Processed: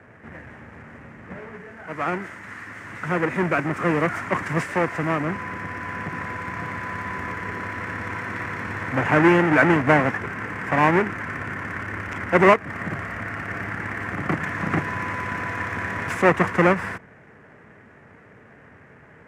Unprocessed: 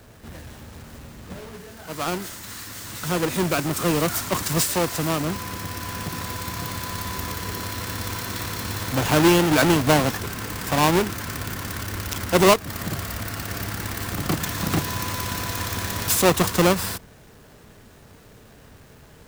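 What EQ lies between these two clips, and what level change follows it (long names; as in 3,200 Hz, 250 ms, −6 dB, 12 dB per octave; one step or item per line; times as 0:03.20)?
high-pass filter 110 Hz 12 dB per octave
low-pass filter 6,400 Hz 12 dB per octave
high shelf with overshoot 2,800 Hz −12.5 dB, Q 3
0.0 dB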